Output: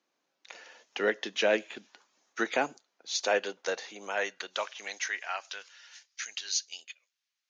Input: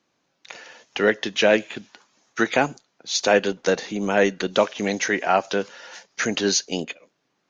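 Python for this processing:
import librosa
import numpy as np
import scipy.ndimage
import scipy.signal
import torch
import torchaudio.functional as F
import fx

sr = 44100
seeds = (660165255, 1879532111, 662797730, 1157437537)

y = fx.filter_sweep_highpass(x, sr, from_hz=290.0, to_hz=2600.0, start_s=2.62, end_s=6.27, q=0.71)
y = y * librosa.db_to_amplitude(-8.0)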